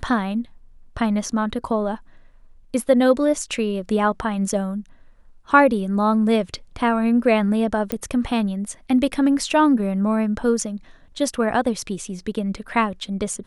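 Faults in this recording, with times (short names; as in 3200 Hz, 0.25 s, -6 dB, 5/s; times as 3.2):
7.92 pop -10 dBFS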